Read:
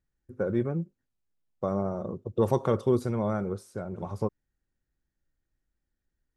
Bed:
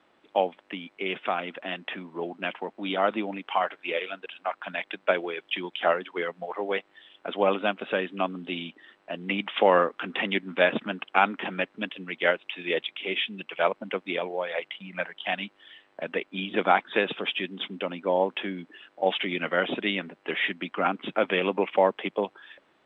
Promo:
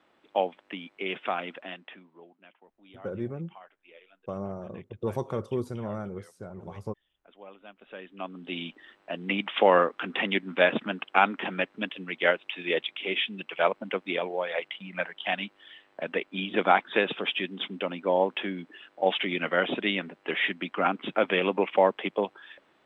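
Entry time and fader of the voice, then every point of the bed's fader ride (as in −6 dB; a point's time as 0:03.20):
2.65 s, −6.0 dB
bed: 0:01.51 −2 dB
0:02.44 −24.5 dB
0:07.60 −24.5 dB
0:08.63 0 dB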